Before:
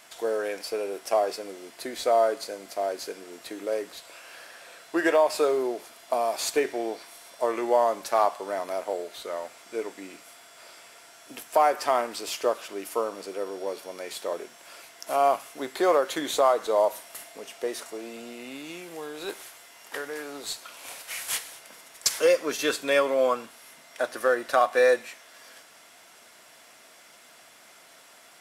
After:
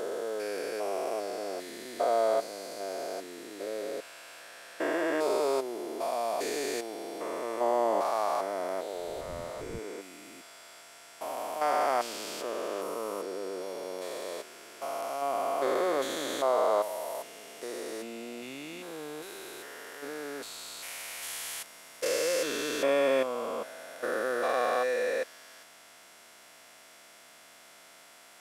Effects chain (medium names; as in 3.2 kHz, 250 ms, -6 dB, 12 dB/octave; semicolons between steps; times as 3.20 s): spectrogram pixelated in time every 400 ms; 8.92–9.78 s: wind noise 190 Hz -43 dBFS